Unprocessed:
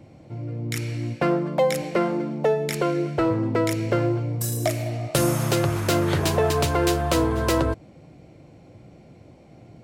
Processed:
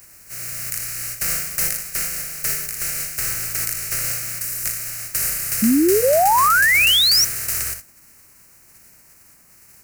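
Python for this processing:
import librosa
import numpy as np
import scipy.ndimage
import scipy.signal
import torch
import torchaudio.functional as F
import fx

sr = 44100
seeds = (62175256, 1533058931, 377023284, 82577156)

p1 = fx.spec_flatten(x, sr, power=0.13)
p2 = fx.rider(p1, sr, range_db=10, speed_s=2.0)
p3 = p1 + (p2 * librosa.db_to_amplitude(2.5))
p4 = fx.peak_eq(p3, sr, hz=220.0, db=3.5, octaves=0.77)
p5 = fx.fixed_phaser(p4, sr, hz=940.0, stages=6)
p6 = fx.dmg_noise_band(p5, sr, seeds[0], low_hz=140.0, high_hz=1200.0, level_db=-50.0)
p7 = fx.peak_eq(p6, sr, hz=640.0, db=-13.5, octaves=2.4)
p8 = p7 + fx.room_early_taps(p7, sr, ms=(62, 79), db=(-9.5, -16.0), dry=0)
p9 = fx.spec_paint(p8, sr, seeds[1], shape='rise', start_s=5.62, length_s=1.63, low_hz=210.0, high_hz=6000.0, level_db=-9.0)
p10 = fx.notch(p9, sr, hz=470.0, q=12.0)
y = p10 * librosa.db_to_amplitude(-6.0)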